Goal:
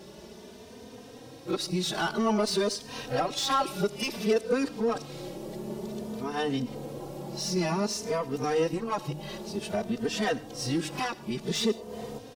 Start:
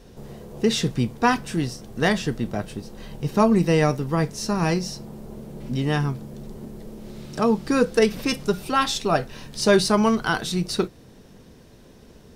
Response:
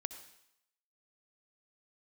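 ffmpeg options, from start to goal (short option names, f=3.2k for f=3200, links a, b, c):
-filter_complex "[0:a]areverse,highpass=f=77:p=1,equalizer=f=1.6k:t=o:w=1.3:g=-7,bandreject=f=152.9:t=h:w=4,bandreject=f=305.8:t=h:w=4,acompressor=threshold=-31dB:ratio=2.5,asplit=2[a][b];[b]highpass=f=720:p=1,volume=15dB,asoftclip=type=tanh:threshold=-18.5dB[c];[a][c]amix=inputs=2:normalize=0,lowpass=f=2.6k:p=1,volume=-6dB,asplit=2[d][e];[1:a]atrim=start_sample=2205,afade=t=out:st=0.22:d=0.01,atrim=end_sample=10143,highshelf=f=4.7k:g=8.5[f];[e][f]afir=irnorm=-1:irlink=0,volume=-3.5dB[g];[d][g]amix=inputs=2:normalize=0,asplit=2[h][i];[i]adelay=3.1,afreqshift=0.54[j];[h][j]amix=inputs=2:normalize=1"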